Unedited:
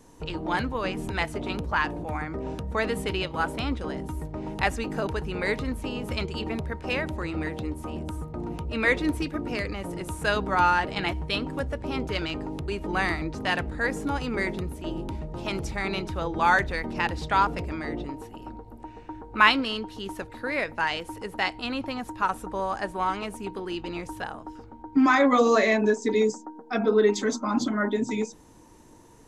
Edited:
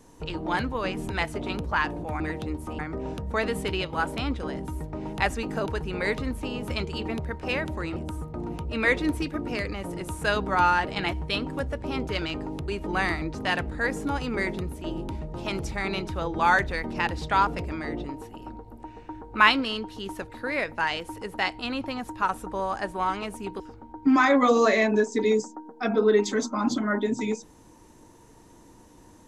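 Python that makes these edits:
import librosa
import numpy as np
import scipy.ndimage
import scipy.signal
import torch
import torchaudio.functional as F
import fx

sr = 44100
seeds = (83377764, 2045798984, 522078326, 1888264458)

y = fx.edit(x, sr, fx.move(start_s=7.37, length_s=0.59, to_s=2.2),
    fx.cut(start_s=23.6, length_s=0.9), tone=tone)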